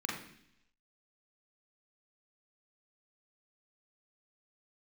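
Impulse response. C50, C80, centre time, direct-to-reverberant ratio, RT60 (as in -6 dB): 4.0 dB, 7.5 dB, 44 ms, -3.5 dB, 0.70 s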